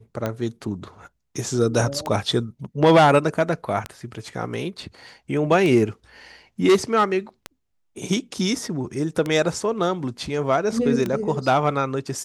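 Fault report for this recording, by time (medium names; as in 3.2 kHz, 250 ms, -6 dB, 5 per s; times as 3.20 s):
tick 33 1/3 rpm -12 dBFS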